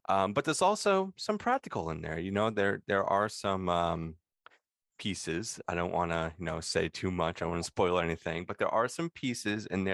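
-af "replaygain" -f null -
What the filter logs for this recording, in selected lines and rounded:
track_gain = +12.0 dB
track_peak = 0.154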